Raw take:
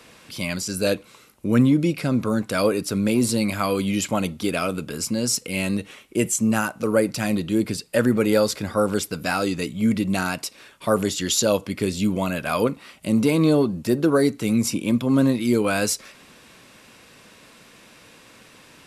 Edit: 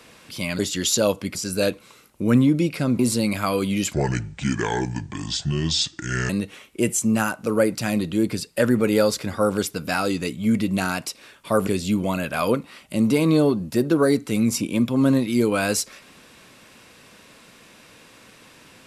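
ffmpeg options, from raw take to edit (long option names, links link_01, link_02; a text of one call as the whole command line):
ffmpeg -i in.wav -filter_complex "[0:a]asplit=7[link_01][link_02][link_03][link_04][link_05][link_06][link_07];[link_01]atrim=end=0.592[link_08];[link_02]atrim=start=11.038:end=11.802[link_09];[link_03]atrim=start=0.588:end=2.232[link_10];[link_04]atrim=start=3.158:end=4.104[link_11];[link_05]atrim=start=4.1:end=5.66,asetpts=PTS-STARTPTS,asetrate=29106,aresample=44100,atrim=end_sample=104236,asetpts=PTS-STARTPTS[link_12];[link_06]atrim=start=5.656:end=11.042[link_13];[link_07]atrim=start=11.798[link_14];[link_08][link_09]acrossfade=duration=0.004:curve1=hsin:curve2=hsin[link_15];[link_15][link_10]acrossfade=duration=0.004:curve1=hsin:curve2=hsin[link_16];[link_16][link_11]acrossfade=duration=0.004:curve1=hsin:curve2=hsin[link_17];[link_17][link_12]acrossfade=duration=0.004:curve1=hsin:curve2=hsin[link_18];[link_18][link_13]acrossfade=duration=0.004:curve1=hsin:curve2=hsin[link_19];[link_19][link_14]acrossfade=duration=0.004:curve1=hsin:curve2=hsin" out.wav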